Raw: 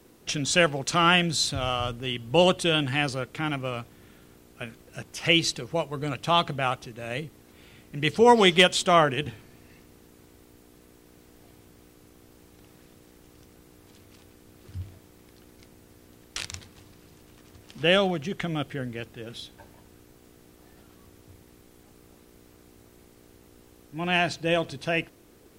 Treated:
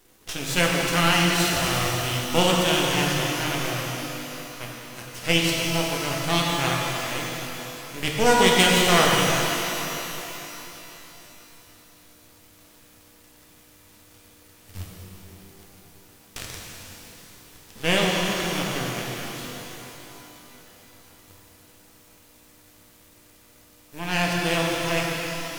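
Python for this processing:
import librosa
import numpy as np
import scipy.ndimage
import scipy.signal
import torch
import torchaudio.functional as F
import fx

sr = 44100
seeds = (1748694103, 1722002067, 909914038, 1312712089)

y = fx.envelope_flatten(x, sr, power=0.6)
y = np.maximum(y, 0.0)
y = fx.rev_shimmer(y, sr, seeds[0], rt60_s=3.5, semitones=12, shimmer_db=-8, drr_db=-2.5)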